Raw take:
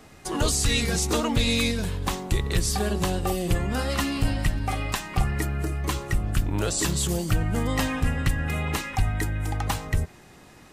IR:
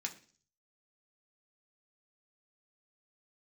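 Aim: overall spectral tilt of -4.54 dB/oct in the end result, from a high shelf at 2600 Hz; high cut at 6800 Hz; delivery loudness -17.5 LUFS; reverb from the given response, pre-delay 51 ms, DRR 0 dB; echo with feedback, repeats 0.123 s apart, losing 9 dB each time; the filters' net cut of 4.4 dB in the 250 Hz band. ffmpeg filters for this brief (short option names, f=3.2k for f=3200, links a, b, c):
-filter_complex "[0:a]lowpass=6.8k,equalizer=f=250:t=o:g=-6,highshelf=f=2.6k:g=-4,aecho=1:1:123|246|369|492:0.355|0.124|0.0435|0.0152,asplit=2[a][b];[1:a]atrim=start_sample=2205,adelay=51[c];[b][c]afir=irnorm=-1:irlink=0,volume=0dB[d];[a][d]amix=inputs=2:normalize=0,volume=8.5dB"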